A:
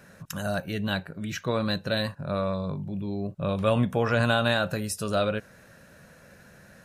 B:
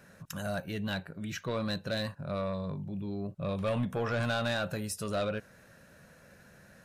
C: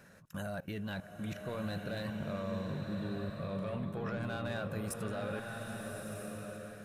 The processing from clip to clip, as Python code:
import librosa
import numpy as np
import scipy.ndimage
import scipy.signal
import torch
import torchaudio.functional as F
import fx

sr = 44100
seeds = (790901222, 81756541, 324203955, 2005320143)

y1 = 10.0 ** (-19.5 / 20.0) * np.tanh(x / 10.0 ** (-19.5 / 20.0))
y1 = y1 * librosa.db_to_amplitude(-4.5)
y2 = fx.dynamic_eq(y1, sr, hz=5300.0, q=0.92, threshold_db=-54.0, ratio=4.0, max_db=-8)
y2 = fx.level_steps(y2, sr, step_db=20)
y2 = fx.rev_bloom(y2, sr, seeds[0], attack_ms=1290, drr_db=2.5)
y2 = y2 * librosa.db_to_amplitude(1.0)